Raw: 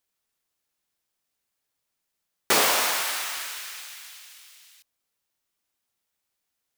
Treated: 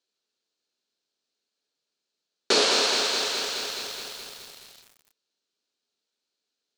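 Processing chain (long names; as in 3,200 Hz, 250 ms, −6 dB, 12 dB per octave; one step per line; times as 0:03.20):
loudspeaker in its box 220–6,900 Hz, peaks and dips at 250 Hz +4 dB, 420 Hz +7 dB, 800 Hz −5 dB, 1,100 Hz −6 dB, 2,000 Hz −8 dB, 4,200 Hz +8 dB
feedback echo at a low word length 211 ms, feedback 80%, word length 7 bits, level −6 dB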